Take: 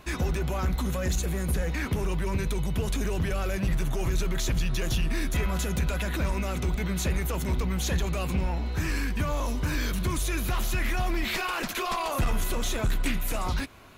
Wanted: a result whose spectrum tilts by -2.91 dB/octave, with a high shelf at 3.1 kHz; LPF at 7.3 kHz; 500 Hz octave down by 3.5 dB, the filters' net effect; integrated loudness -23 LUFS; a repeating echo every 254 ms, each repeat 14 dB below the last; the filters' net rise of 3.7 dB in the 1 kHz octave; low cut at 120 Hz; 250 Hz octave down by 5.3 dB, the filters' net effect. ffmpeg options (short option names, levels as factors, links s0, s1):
-af "highpass=120,lowpass=7300,equalizer=f=250:t=o:g=-6.5,equalizer=f=500:t=o:g=-4,equalizer=f=1000:t=o:g=5,highshelf=f=3100:g=6.5,aecho=1:1:254|508:0.2|0.0399,volume=2.37"